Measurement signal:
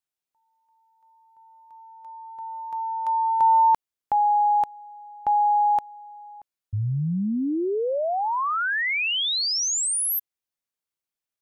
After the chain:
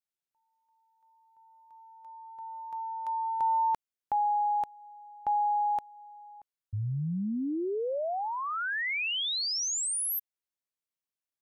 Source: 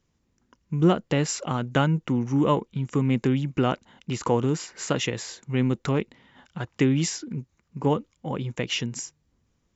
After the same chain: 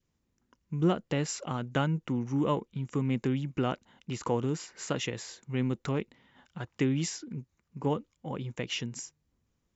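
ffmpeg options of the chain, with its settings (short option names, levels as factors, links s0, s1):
-af "adynamicequalizer=threshold=0.02:dfrequency=1000:dqfactor=2:tfrequency=1000:tqfactor=2:attack=5:release=100:ratio=0.375:range=2:mode=cutabove:tftype=bell,volume=0.473"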